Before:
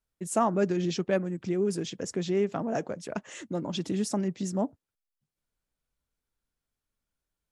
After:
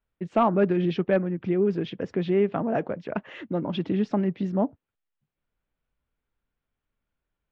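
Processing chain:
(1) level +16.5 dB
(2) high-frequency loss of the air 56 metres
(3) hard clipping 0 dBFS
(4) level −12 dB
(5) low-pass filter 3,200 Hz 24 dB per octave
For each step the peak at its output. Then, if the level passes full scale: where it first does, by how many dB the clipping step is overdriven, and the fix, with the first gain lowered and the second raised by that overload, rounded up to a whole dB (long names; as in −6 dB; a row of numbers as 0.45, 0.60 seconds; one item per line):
+4.0, +4.0, 0.0, −12.0, −11.5 dBFS
step 1, 4.0 dB
step 1 +12.5 dB, step 4 −8 dB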